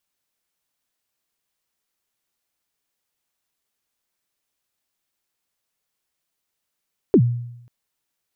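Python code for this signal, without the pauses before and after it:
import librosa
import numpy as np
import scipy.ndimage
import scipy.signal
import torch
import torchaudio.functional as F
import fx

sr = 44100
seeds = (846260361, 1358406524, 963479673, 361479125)

y = fx.drum_kick(sr, seeds[0], length_s=0.54, level_db=-7.5, start_hz=450.0, end_hz=120.0, sweep_ms=69.0, decay_s=0.81, click=False)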